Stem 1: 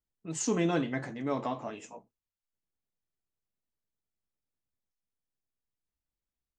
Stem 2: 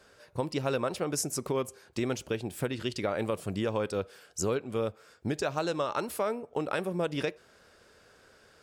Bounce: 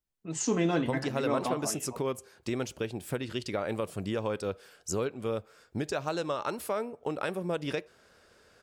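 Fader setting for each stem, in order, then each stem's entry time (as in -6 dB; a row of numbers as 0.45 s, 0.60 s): +1.0 dB, -1.5 dB; 0.00 s, 0.50 s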